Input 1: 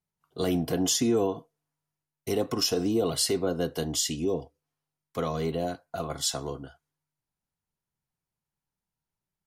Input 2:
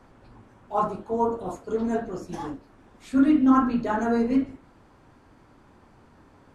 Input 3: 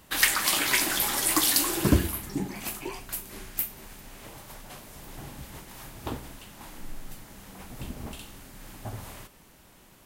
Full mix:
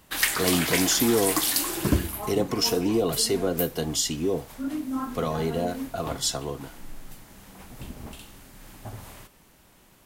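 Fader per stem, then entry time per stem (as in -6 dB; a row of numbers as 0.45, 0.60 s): +2.0, -12.0, -1.5 dB; 0.00, 1.45, 0.00 s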